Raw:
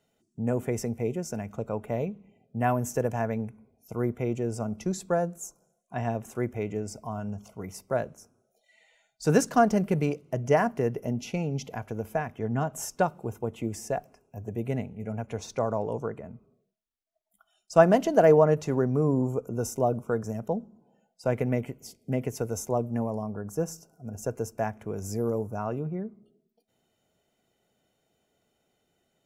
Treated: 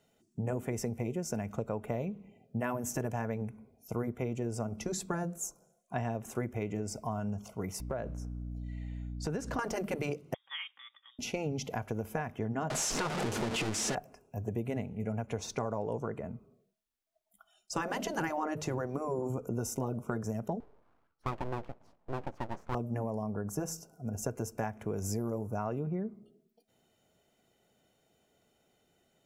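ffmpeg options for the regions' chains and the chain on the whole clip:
-filter_complex "[0:a]asettb=1/sr,asplit=3[a][b][c];[a]atrim=end=7.804[d];[b]atrim=start=7.8:end=9.59,asetpts=PTS-STARTPTS,afade=t=in:d=0.004:c=qsin,afade=t=out:st=1.786:d=0.004:c=qsin,lowpass=f=3.2k:p=1,aeval=exprs='val(0)+0.01*(sin(2*PI*60*n/s)+sin(2*PI*2*60*n/s)/2+sin(2*PI*3*60*n/s)/3+sin(2*PI*4*60*n/s)/4+sin(2*PI*5*60*n/s)/5)':c=same,acompressor=threshold=-32dB:ratio=5:attack=3.2:release=140:knee=1:detection=peak[e];[c]atrim=start=9.586[f];[d][e]acrossfade=d=0.004:c1=hsin:c2=qsin[g];[g][f]acrossfade=d=0.004:c1=qsin:c2=hsin,asettb=1/sr,asplit=3[h][i][j];[h]atrim=end=10.344[k];[i]atrim=start=10.34:end=11.19,asetpts=PTS-STARTPTS,afade=t=in:d=0.004:c=qsin,afade=t=out:st=0.846:d=0.004:c=qsin,highpass=560,aderivative,lowpass=f=3.3k:t=q:w=0.5098,lowpass=f=3.3k:t=q:w=0.6013,lowpass=f=3.3k:t=q:w=0.9,lowpass=f=3.3k:t=q:w=2.563,afreqshift=-3900[l];[j]atrim=start=11.186[m];[k][l]acrossfade=d=0.004:c1=hsin:c2=qsin[n];[n][m]acrossfade=d=0.004:c1=qsin:c2=hsin,asettb=1/sr,asplit=3[o][p][q];[o]atrim=end=12.704[r];[p]atrim=start=12.7:end=13.95,asetpts=PTS-STARTPTS,afade=t=in:d=0.004:c=qsin,afade=t=out:st=1.246:d=0.004:c=qsin,aeval=exprs='val(0)+0.5*0.0531*sgn(val(0))':c=same,lowpass=7.1k,equalizer=f=67:w=1.1:g=-15[s];[q]atrim=start=13.946[t];[r][s]acrossfade=d=0.004:c1=hsin:c2=qsin[u];[u][t]acrossfade=d=0.004:c1=qsin:c2=hsin,asettb=1/sr,asplit=3[v][w][x];[v]atrim=end=20.604[y];[w]atrim=start=20.6:end=22.75,asetpts=PTS-STARTPTS,afade=t=in:d=0.004:c=qsin,afade=t=out:st=2.146:d=0.004:c=qsin,lowpass=1k,lowshelf=f=270:g=-11.5,aeval=exprs='abs(val(0))':c=same[z];[x]atrim=start=22.746[aa];[y][z]acrossfade=d=0.004:c1=hsin:c2=qsin[ab];[ab][aa]acrossfade=d=0.004:c1=qsin:c2=hsin,afftfilt=real='re*lt(hypot(re,im),0.355)':imag='im*lt(hypot(re,im),0.355)':win_size=1024:overlap=0.75,acompressor=threshold=-32dB:ratio=6,volume=2dB"

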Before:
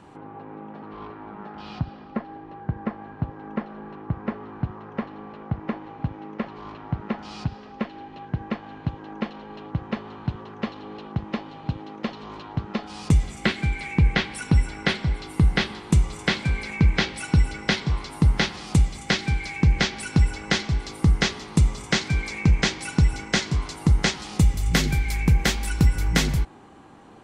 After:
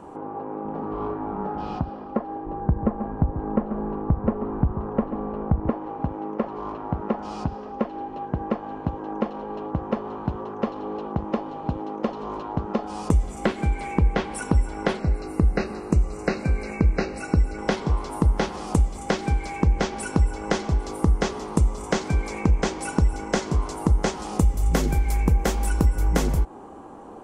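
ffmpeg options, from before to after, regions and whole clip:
-filter_complex "[0:a]asettb=1/sr,asplit=3[a][b][c];[a]atrim=end=0.654[d];[b]atrim=start=0.65:end=1.78,asetpts=PTS-STARTPTS,afade=t=in:d=0.004:c=qsin,afade=t=out:st=1.126:d=0.004:c=qsin,lowshelf=f=160:g=11,asplit=2[e][f];[f]adelay=31,volume=-7dB[g];[e][g]amix=inputs=2:normalize=0,atrim=end_sample=49833[h];[c]atrim=start=1.776[i];[d][h]acrossfade=d=0.004:c1=hsin:c2=qsin[j];[j][i]acrossfade=d=0.004:c1=qsin:c2=hsin,asettb=1/sr,asplit=3[k][l][m];[k]atrim=end=2.464[n];[l]atrim=start=2.46:end=5.7,asetpts=PTS-STARTPTS,afade=t=in:d=0.004:c=qsin,afade=t=out:st=3.236:d=0.004:c=qsin,aemphasis=mode=reproduction:type=bsi,aecho=1:1:138:0.211,atrim=end_sample=142884[o];[m]atrim=start=5.696[p];[n][o]acrossfade=d=0.004:c1=hsin:c2=qsin[q];[q][p]acrossfade=d=0.004:c1=qsin:c2=hsin,asettb=1/sr,asplit=3[r][s][t];[r]atrim=end=14.994[u];[s]atrim=start=14.99:end=17.58,asetpts=PTS-STARTPTS,afade=t=in:d=0.004:c=qsin,afade=t=out:st=2.586:d=0.004:c=qsin,acrossover=split=6700[v][w];[w]acompressor=threshold=-56dB:ratio=4:attack=1:release=60[x];[v][x]amix=inputs=2:normalize=0,asuperstop=centerf=3300:order=20:qfactor=3.6,equalizer=f=950:t=o:w=0.43:g=-9[y];[t]atrim=start=17.576[z];[u][y]acrossfade=d=0.004:c1=hsin:c2=qsin[aa];[aa][z]acrossfade=d=0.004:c1=qsin:c2=hsin,equalizer=f=125:t=o:w=1:g=-10,equalizer=f=500:t=o:w=1:g=5,equalizer=f=1k:t=o:w=1:g=4,equalizer=f=2k:t=o:w=1:g=-8,equalizer=f=4k:t=o:w=1:g=-10,acompressor=threshold=-27dB:ratio=2,lowshelf=f=410:g=3.5,volume=4dB"

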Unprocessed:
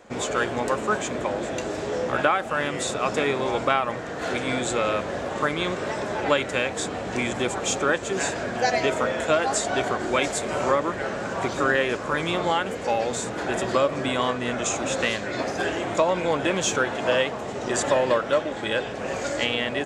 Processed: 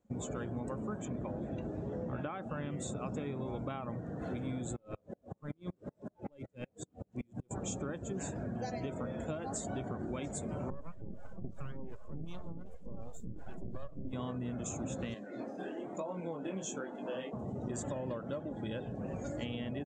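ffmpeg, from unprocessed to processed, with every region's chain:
-filter_complex "[0:a]asettb=1/sr,asplit=3[a][b][c];[a]atrim=end=1.054[d];[b]atrim=start=1.05:end=2.76,asetpts=PTS-STARTPTS,afade=t=in:d=0.004:c=qsin,afade=t=out:st=1.706:d=0.004:c=qsin,acrossover=split=3600[e][f];[f]acompressor=threshold=-51dB:ratio=4:attack=1:release=60[g];[e][g]amix=inputs=2:normalize=0,lowpass=6.1k,highshelf=f=4.7k:g=11.5[h];[c]atrim=start=2.756[i];[d][h]acrossfade=d=0.004:c1=hsin:c2=qsin[j];[j][i]acrossfade=d=0.004:c1=qsin:c2=hsin,asettb=1/sr,asplit=3[k][l][m];[k]atrim=end=4.764[n];[l]atrim=start=4.76:end=7.51,asetpts=PTS-STARTPTS,afade=t=in:d=0.004:c=qsin,afade=t=out:st=2.746:d=0.004:c=qsin,aeval=exprs='clip(val(0),-1,0.0668)':c=same,aeval=exprs='val(0)*pow(10,-38*if(lt(mod(-5.3*n/s,1),2*abs(-5.3)/1000),1-mod(-5.3*n/s,1)/(2*abs(-5.3)/1000),(mod(-5.3*n/s,1)-2*abs(-5.3)/1000)/(1-2*abs(-5.3)/1000))/20)':c=same[o];[m]atrim=start=7.506[p];[n][o]acrossfade=d=0.004:c1=hsin:c2=qsin[q];[q][p]acrossfade=d=0.004:c1=qsin:c2=hsin,asettb=1/sr,asplit=3[r][s][t];[r]atrim=end=10.704[u];[s]atrim=start=10.7:end=14.13,asetpts=PTS-STARTPTS,afade=t=in:d=0.004:c=qsin,afade=t=out:st=3.426:d=0.004:c=qsin,acrossover=split=490[v][w];[v]aeval=exprs='val(0)*(1-1/2+1/2*cos(2*PI*2.7*n/s))':c=same[x];[w]aeval=exprs='val(0)*(1-1/2-1/2*cos(2*PI*2.7*n/s))':c=same[y];[x][y]amix=inputs=2:normalize=0,aeval=exprs='max(val(0),0)':c=same[z];[t]atrim=start=14.126[aa];[u][z]acrossfade=d=0.004:c1=hsin:c2=qsin[ab];[ab][aa]acrossfade=d=0.004:c1=qsin:c2=hsin,asettb=1/sr,asplit=3[ac][ad][ae];[ac]atrim=end=15.144[af];[ad]atrim=start=15.14:end=17.33,asetpts=PTS-STARTPTS,afade=t=in:d=0.004:c=qsin,afade=t=out:st=2.186:d=0.004:c=qsin,highpass=240,flanger=delay=20:depth=6.6:speed=1.1[ag];[ae]atrim=start=17.326[ah];[af][ag]acrossfade=d=0.004:c1=hsin:c2=qsin[ai];[ai][ah]acrossfade=d=0.004:c1=qsin:c2=hsin,afftdn=nr=18:nf=-34,firequalizer=gain_entry='entry(170,0);entry(410,-13);entry(1800,-22);entry(3100,-18);entry(4800,-18);entry(6900,-11)':delay=0.05:min_phase=1,acompressor=threshold=-37dB:ratio=6,volume=2dB"

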